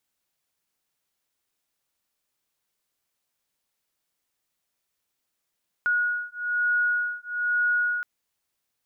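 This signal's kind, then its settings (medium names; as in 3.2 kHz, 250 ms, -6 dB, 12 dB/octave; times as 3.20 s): beating tones 1.45 kHz, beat 1.1 Hz, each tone -25.5 dBFS 2.17 s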